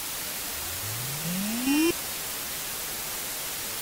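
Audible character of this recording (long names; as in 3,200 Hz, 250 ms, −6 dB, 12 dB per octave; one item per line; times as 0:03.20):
a buzz of ramps at a fixed pitch in blocks of 16 samples
tremolo saw down 2.4 Hz, depth 70%
a quantiser's noise floor 6 bits, dither triangular
AAC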